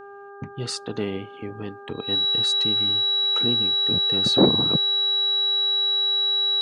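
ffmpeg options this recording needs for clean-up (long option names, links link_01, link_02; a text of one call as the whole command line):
ffmpeg -i in.wav -af "bandreject=frequency=401.1:width_type=h:width=4,bandreject=frequency=802.2:width_type=h:width=4,bandreject=frequency=1203.3:width_type=h:width=4,bandreject=frequency=1604.4:width_type=h:width=4,bandreject=frequency=3900:width=30" out.wav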